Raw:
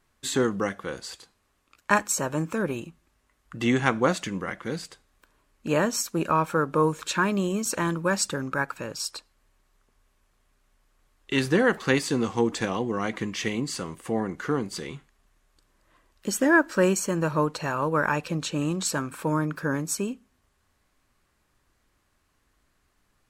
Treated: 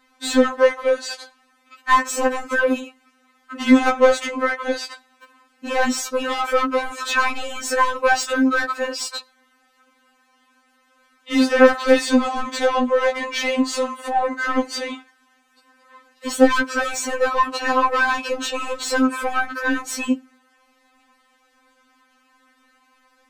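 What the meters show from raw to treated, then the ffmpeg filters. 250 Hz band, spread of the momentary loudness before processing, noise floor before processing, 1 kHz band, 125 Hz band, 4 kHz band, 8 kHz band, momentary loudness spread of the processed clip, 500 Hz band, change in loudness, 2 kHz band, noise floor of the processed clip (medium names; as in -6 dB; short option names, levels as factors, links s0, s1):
+5.0 dB, 13 LU, -71 dBFS, +8.5 dB, under -20 dB, +7.0 dB, +1.5 dB, 11 LU, +7.5 dB, +6.0 dB, +7.0 dB, -62 dBFS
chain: -filter_complex "[0:a]asplit=2[s0][s1];[s1]highpass=f=720:p=1,volume=22.4,asoftclip=type=tanh:threshold=0.631[s2];[s0][s2]amix=inputs=2:normalize=0,lowpass=f=1900:p=1,volume=0.501,afftfilt=real='re*3.46*eq(mod(b,12),0)':imag='im*3.46*eq(mod(b,12),0)':win_size=2048:overlap=0.75,volume=0.891"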